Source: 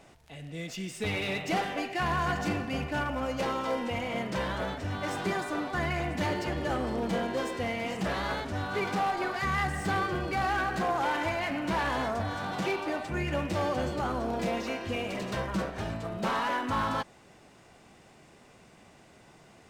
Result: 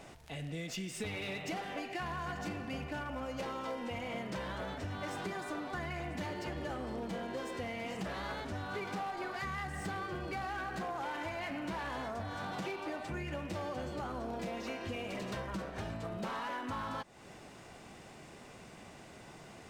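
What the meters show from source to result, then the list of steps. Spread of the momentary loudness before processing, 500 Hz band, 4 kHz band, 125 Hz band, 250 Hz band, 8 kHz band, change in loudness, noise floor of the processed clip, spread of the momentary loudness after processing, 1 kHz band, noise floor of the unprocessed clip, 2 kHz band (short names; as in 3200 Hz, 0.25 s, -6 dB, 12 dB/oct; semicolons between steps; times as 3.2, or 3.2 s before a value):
5 LU, -8.5 dB, -8.0 dB, -8.0 dB, -8.0 dB, -6.0 dB, -8.5 dB, -53 dBFS, 14 LU, -9.0 dB, -57 dBFS, -8.5 dB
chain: compressor, threshold -41 dBFS, peak gain reduction 15.5 dB; gain +3.5 dB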